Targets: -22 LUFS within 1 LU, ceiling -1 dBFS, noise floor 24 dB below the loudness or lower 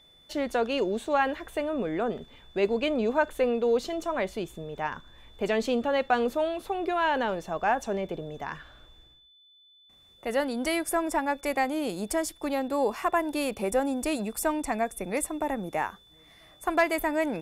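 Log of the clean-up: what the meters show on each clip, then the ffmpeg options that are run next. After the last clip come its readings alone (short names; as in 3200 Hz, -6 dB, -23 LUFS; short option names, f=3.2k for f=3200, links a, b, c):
steady tone 3500 Hz; tone level -56 dBFS; loudness -29.0 LUFS; peak -11.5 dBFS; loudness target -22.0 LUFS
-> -af "bandreject=f=3.5k:w=30"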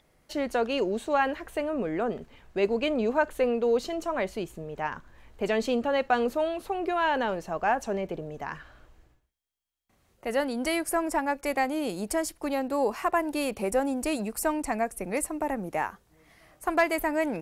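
steady tone none; loudness -29.0 LUFS; peak -11.5 dBFS; loudness target -22.0 LUFS
-> -af "volume=7dB"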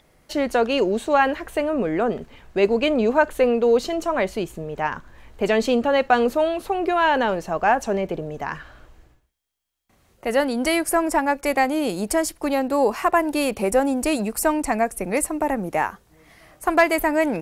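loudness -22.0 LUFS; peak -4.5 dBFS; noise floor -60 dBFS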